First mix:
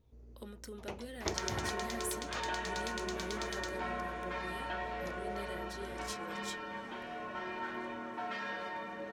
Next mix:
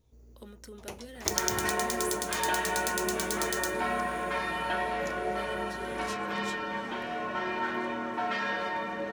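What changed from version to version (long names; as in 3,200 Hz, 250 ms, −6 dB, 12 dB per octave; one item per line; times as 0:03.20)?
first sound: remove high-frequency loss of the air 160 metres
second sound +8.5 dB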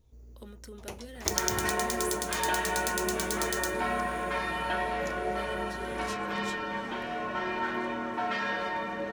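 master: add low-shelf EQ 60 Hz +9 dB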